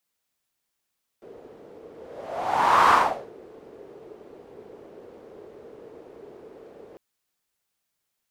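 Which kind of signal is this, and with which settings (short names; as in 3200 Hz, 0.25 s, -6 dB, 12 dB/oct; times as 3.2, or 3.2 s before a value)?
whoosh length 5.75 s, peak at 1.7, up 1.09 s, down 0.42 s, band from 430 Hz, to 1100 Hz, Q 4.2, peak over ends 29 dB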